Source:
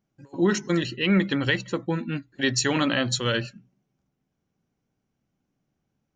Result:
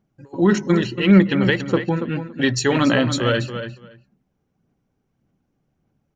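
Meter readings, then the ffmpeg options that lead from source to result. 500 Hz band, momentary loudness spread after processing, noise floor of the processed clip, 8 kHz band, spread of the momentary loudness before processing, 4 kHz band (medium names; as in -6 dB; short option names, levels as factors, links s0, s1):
+7.0 dB, 13 LU, -72 dBFS, -0.5 dB, 7 LU, +1.0 dB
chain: -filter_complex "[0:a]highshelf=f=2200:g=-8,aphaser=in_gain=1:out_gain=1:delay=2.5:decay=0.31:speed=1.7:type=sinusoidal,asplit=2[s0][s1];[s1]adelay=282,lowpass=f=4600:p=1,volume=0.335,asplit=2[s2][s3];[s3]adelay=282,lowpass=f=4600:p=1,volume=0.15[s4];[s2][s4]amix=inputs=2:normalize=0[s5];[s0][s5]amix=inputs=2:normalize=0,volume=2"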